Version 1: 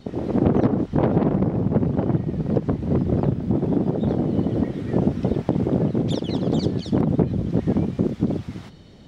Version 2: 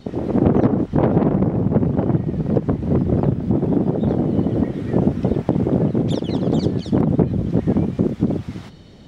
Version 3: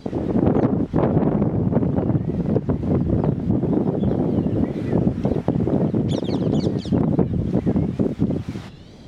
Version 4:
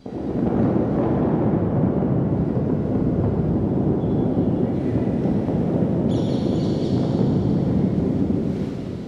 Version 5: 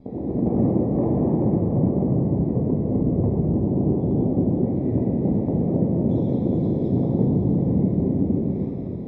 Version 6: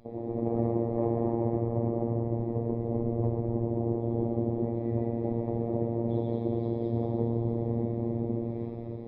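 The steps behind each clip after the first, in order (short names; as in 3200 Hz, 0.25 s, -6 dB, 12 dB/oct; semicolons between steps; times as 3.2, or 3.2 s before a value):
dynamic EQ 4500 Hz, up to -4 dB, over -48 dBFS, Q 0.86; gain +3 dB
in parallel at 0 dB: compressor, threshold -23 dBFS, peak gain reduction 13 dB; on the sum: wow and flutter 140 cents; gain -4.5 dB
plate-style reverb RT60 4.6 s, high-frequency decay 0.85×, DRR -6 dB; gain -7.5 dB
running mean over 30 samples
bell 180 Hz -13 dB 1.2 oct; robotiser 116 Hz; downsampling 11025 Hz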